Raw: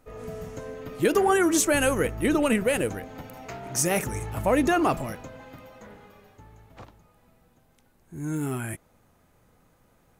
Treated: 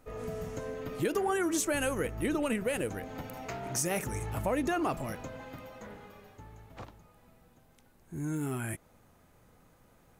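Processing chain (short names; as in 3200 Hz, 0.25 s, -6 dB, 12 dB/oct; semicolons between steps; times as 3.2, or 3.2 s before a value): compressor 2:1, threshold -34 dBFS, peak gain reduction 9.5 dB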